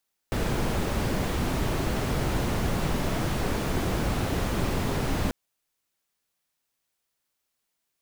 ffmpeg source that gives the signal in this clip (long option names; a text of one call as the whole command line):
ffmpeg -f lavfi -i "anoisesrc=color=brown:amplitude=0.234:duration=4.99:sample_rate=44100:seed=1" out.wav